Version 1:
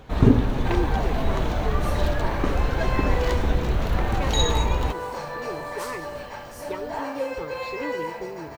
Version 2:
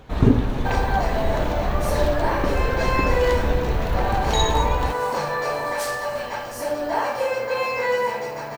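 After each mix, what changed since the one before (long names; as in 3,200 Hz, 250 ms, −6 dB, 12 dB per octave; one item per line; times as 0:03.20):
speech: muted
second sound +8.0 dB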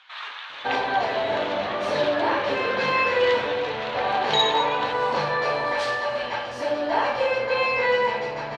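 first sound: add inverse Chebyshev high-pass filter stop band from 190 Hz, stop band 80 dB
master: add low-pass with resonance 3,500 Hz, resonance Q 2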